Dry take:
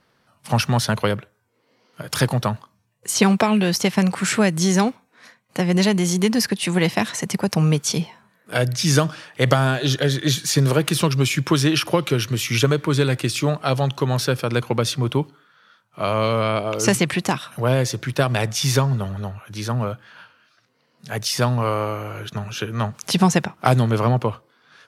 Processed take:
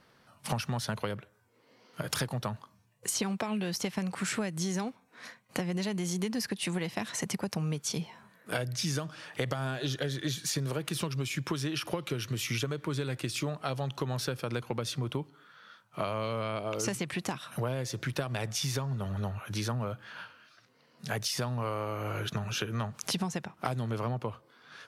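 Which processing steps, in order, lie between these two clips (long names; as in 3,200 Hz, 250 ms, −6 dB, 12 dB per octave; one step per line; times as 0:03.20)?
downward compressor 8 to 1, threshold −30 dBFS, peak gain reduction 19 dB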